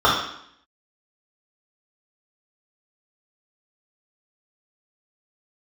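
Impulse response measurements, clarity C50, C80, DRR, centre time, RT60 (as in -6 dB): 2.5 dB, 6.5 dB, -8.0 dB, 47 ms, 0.70 s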